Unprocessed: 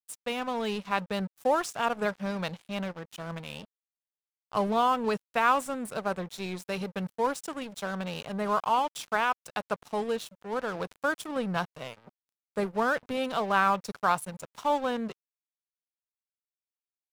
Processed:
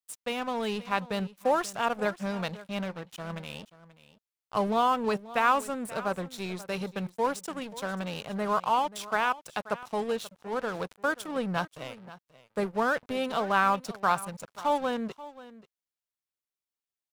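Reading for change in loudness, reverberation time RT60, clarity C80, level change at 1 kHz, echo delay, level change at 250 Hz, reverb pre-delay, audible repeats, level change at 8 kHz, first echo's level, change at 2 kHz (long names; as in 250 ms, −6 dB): 0.0 dB, no reverb audible, no reverb audible, 0.0 dB, 533 ms, 0.0 dB, no reverb audible, 1, 0.0 dB, −17.5 dB, 0.0 dB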